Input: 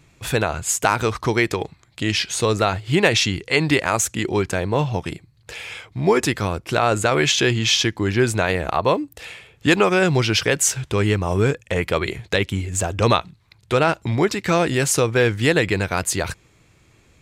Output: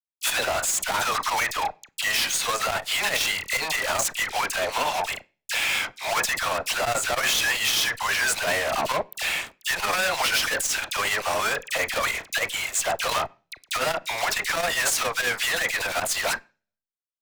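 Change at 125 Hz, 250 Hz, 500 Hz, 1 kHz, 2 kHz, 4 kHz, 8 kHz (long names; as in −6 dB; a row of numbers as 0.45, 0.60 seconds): −22.0, −20.0, −10.0, −2.5, −0.5, −1.0, −1.0 decibels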